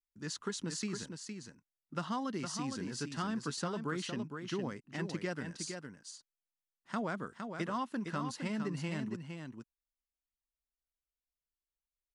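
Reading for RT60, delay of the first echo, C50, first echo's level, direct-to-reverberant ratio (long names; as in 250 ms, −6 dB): no reverb audible, 461 ms, no reverb audible, −6.5 dB, no reverb audible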